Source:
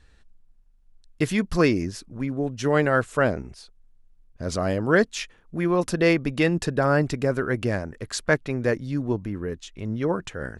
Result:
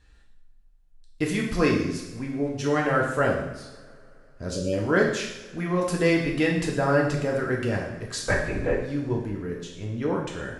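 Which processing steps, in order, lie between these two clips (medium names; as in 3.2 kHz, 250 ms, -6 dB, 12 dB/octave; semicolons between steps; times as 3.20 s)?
4.49–4.73 s: spectral selection erased 600–2300 Hz; 8.28–8.82 s: LPC vocoder at 8 kHz whisper; two-slope reverb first 0.82 s, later 3.3 s, from -22 dB, DRR -1.5 dB; trim -4.5 dB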